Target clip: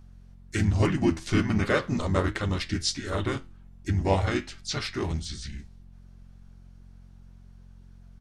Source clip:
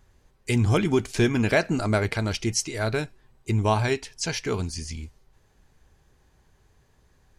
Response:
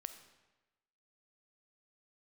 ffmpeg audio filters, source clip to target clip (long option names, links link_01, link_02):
-filter_complex "[0:a]asplit=3[link_01][link_02][link_03];[link_02]asetrate=33038,aresample=44100,atempo=1.33484,volume=-8dB[link_04];[link_03]asetrate=37084,aresample=44100,atempo=1.18921,volume=-4dB[link_05];[link_01][link_04][link_05]amix=inputs=3:normalize=0,flanger=delay=8.1:depth=3.2:regen=76:speed=1.4:shape=triangular,aeval=exprs='val(0)+0.00398*(sin(2*PI*50*n/s)+sin(2*PI*2*50*n/s)/2+sin(2*PI*3*50*n/s)/3+sin(2*PI*4*50*n/s)/4+sin(2*PI*5*50*n/s)/5)':channel_layout=same,asetrate=39690,aresample=44100"